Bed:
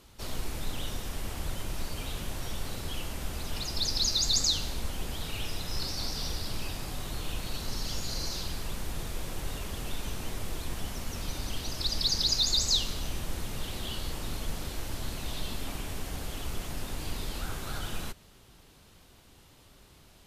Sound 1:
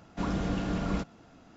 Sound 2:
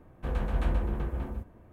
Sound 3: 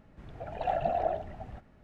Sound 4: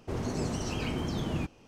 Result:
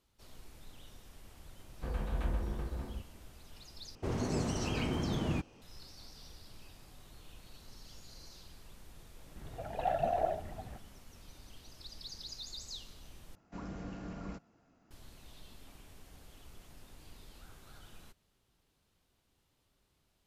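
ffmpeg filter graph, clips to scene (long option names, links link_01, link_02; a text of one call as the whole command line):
ffmpeg -i bed.wav -i cue0.wav -i cue1.wav -i cue2.wav -i cue3.wav -filter_complex "[0:a]volume=-19dB[link_01];[1:a]equalizer=frequency=3500:width=3.3:gain=-7.5[link_02];[link_01]asplit=3[link_03][link_04][link_05];[link_03]atrim=end=3.954[link_06];[4:a]atrim=end=1.67,asetpts=PTS-STARTPTS,volume=-1.5dB[link_07];[link_04]atrim=start=5.616:end=13.354[link_08];[link_02]atrim=end=1.56,asetpts=PTS-STARTPTS,volume=-13dB[link_09];[link_05]atrim=start=14.906[link_10];[2:a]atrim=end=1.72,asetpts=PTS-STARTPTS,volume=-6.5dB,afade=type=in:duration=0.004:curve=hsin,afade=type=out:start_time=1.716:duration=0.004:curve=hsin,adelay=1590[link_11];[3:a]atrim=end=1.83,asetpts=PTS-STARTPTS,volume=-2.5dB,afade=type=in:duration=0.004:curve=hsin,afade=type=out:start_time=1.826:duration=0.004:curve=hsin,adelay=9180[link_12];[link_06][link_07]acrossfade=duration=0.004:curve1=hsin:curve2=hsin[link_13];[link_13][link_08]acrossfade=duration=0.004:curve1=hsin:curve2=hsin[link_14];[link_14][link_09]acrossfade=duration=0.004:curve1=hsin:curve2=hsin[link_15];[link_15][link_10]acrossfade=duration=0.004:curve1=hsin:curve2=hsin[link_16];[link_16][link_11][link_12]amix=inputs=3:normalize=0" out.wav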